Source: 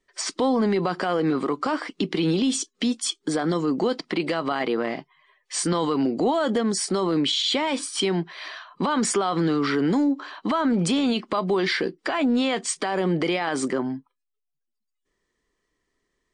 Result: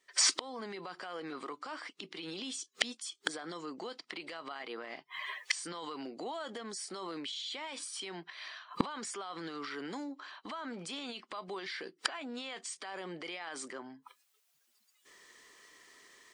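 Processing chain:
high-pass filter 1,300 Hz 6 dB per octave
brickwall limiter −25 dBFS, peak gain reduction 10.5 dB
automatic gain control gain up to 16 dB
gate with flip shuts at −20 dBFS, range −29 dB
level +5.5 dB

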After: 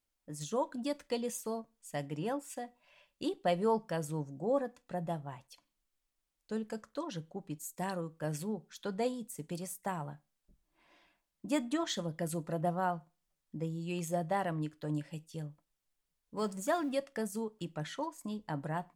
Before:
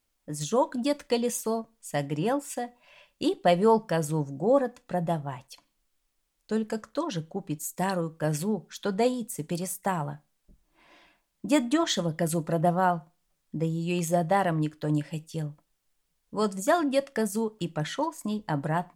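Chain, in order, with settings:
0:16.37–0:16.95: mu-law and A-law mismatch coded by mu
level −9 dB

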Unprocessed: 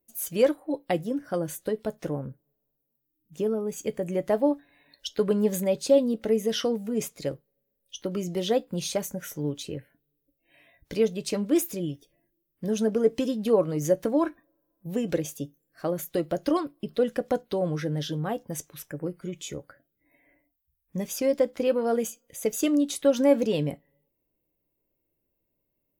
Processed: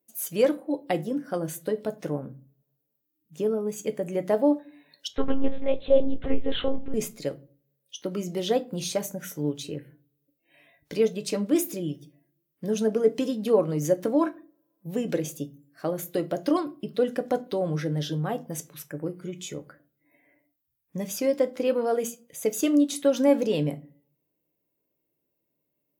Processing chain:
high-pass filter 130 Hz 12 dB per octave
0:05.08–0:06.94: one-pitch LPC vocoder at 8 kHz 270 Hz
rectangular room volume 220 cubic metres, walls furnished, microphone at 0.39 metres

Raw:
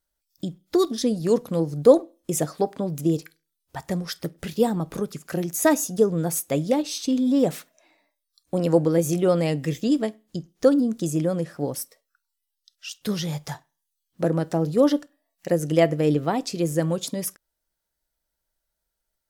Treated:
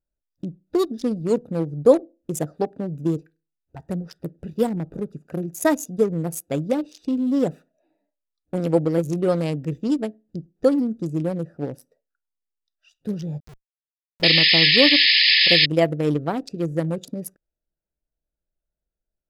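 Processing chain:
adaptive Wiener filter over 41 samples
0:13.40–0:14.22: comparator with hysteresis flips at −36.5 dBFS
0:14.23–0:15.66: sound drawn into the spectrogram noise 1,700–5,200 Hz −16 dBFS

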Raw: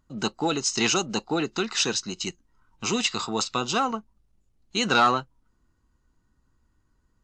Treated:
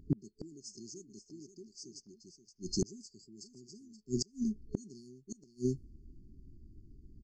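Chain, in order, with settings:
low-pass that shuts in the quiet parts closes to 2,000 Hz, open at −21.5 dBFS
brick-wall band-stop 430–4,300 Hz
on a send: single-tap delay 526 ms −11.5 dB
on the sum: gate with flip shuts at −32 dBFS, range −36 dB
level +13.5 dB

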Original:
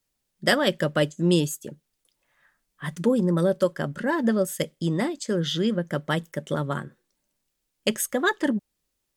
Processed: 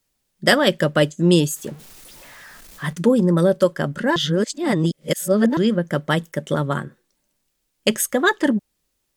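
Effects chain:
0:01.56–0:02.93: converter with a step at zero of −43.5 dBFS
0:04.16–0:05.57: reverse
level +5.5 dB

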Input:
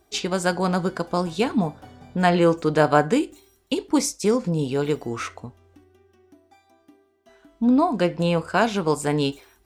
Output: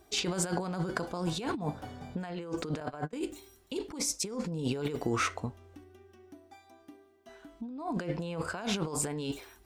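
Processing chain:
0:02.80–0:03.21: noise gate −18 dBFS, range −34 dB
compressor whose output falls as the input rises −29 dBFS, ratio −1
level −5.5 dB

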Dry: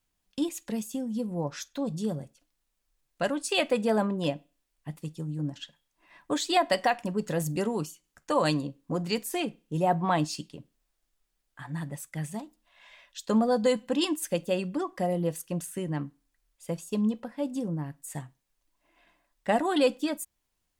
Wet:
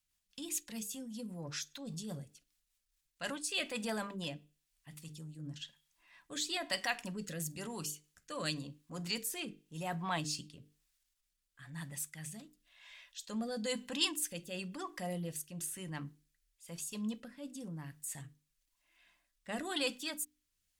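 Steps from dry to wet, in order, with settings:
mains-hum notches 50/100/150/200/250/300/350/400/450 Hz
transient designer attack −5 dB, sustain +2 dB
rotating-speaker cabinet horn 5 Hz, later 1 Hz, at 0:02.70
guitar amp tone stack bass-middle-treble 5-5-5
level +8.5 dB

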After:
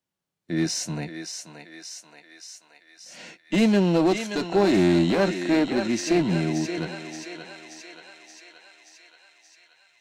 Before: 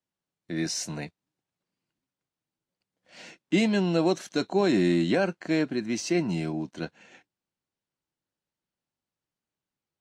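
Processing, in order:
feedback echo with a high-pass in the loop 577 ms, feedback 67%, high-pass 580 Hz, level −6.5 dB
asymmetric clip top −24 dBFS, bottom −16 dBFS
harmonic and percussive parts rebalanced harmonic +6 dB

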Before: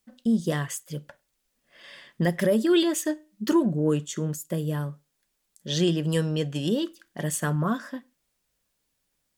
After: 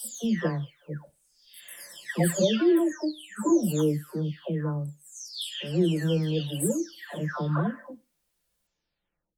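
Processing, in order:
every frequency bin delayed by itself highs early, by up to 706 ms

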